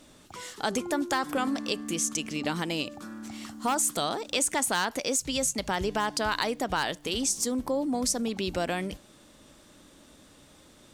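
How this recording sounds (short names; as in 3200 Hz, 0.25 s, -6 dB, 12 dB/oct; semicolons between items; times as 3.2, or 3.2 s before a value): noise floor -56 dBFS; spectral tilt -2.5 dB/oct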